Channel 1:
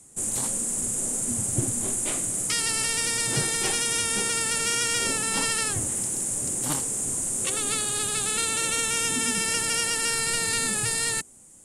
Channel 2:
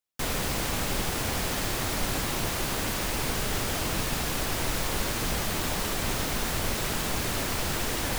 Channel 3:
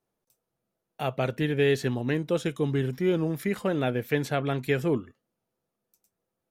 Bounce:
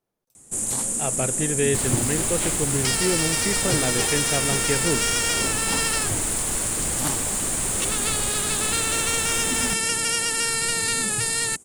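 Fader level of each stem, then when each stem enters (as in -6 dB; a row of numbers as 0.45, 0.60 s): +2.0, -2.0, 0.0 dB; 0.35, 1.55, 0.00 s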